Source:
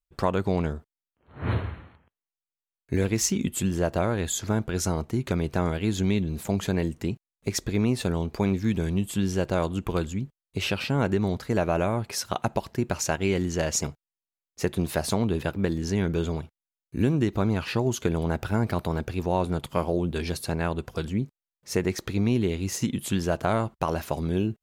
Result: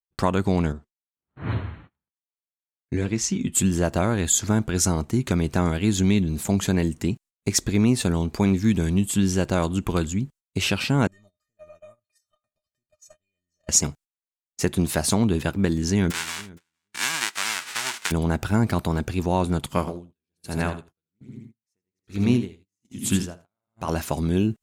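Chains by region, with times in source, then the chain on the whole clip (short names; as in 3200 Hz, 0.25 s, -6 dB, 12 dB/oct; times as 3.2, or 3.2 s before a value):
0.72–3.55 flange 1.6 Hz, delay 4.8 ms, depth 4.1 ms, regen -53% + air absorption 67 m
11.07–13.69 compressor 4:1, threshold -34 dBFS + resonator 610 Hz, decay 0.17 s, mix 100%
16.1–18.1 spectral whitening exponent 0.1 + band-pass 1700 Hz, Q 0.99 + feedback echo 0.466 s, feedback 16%, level -22.5 dB
19.79–23.89 de-hum 55.9 Hz, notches 39 + feedback echo 81 ms, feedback 35%, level -7 dB + dB-linear tremolo 1.2 Hz, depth 38 dB
whole clip: gate -49 dBFS, range -28 dB; graphic EQ 250/500/8000 Hz +3/-4/+7 dB; gain +3.5 dB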